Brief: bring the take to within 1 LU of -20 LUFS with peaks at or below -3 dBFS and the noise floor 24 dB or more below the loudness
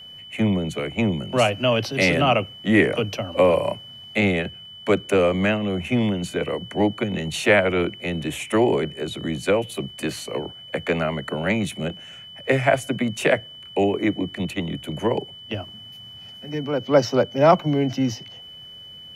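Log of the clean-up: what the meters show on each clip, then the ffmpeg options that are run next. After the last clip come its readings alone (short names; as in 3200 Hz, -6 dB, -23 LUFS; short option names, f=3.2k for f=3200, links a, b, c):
steady tone 3000 Hz; tone level -39 dBFS; loudness -22.5 LUFS; peak -2.5 dBFS; loudness target -20.0 LUFS
-> -af "bandreject=f=3k:w=30"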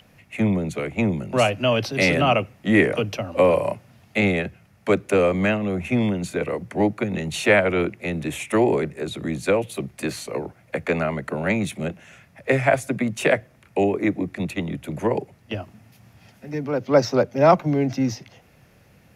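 steady tone none; loudness -22.5 LUFS; peak -2.5 dBFS; loudness target -20.0 LUFS
-> -af "volume=2.5dB,alimiter=limit=-3dB:level=0:latency=1"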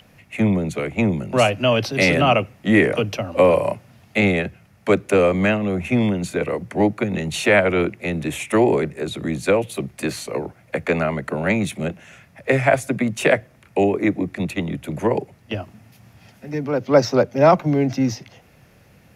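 loudness -20.0 LUFS; peak -3.0 dBFS; noise floor -53 dBFS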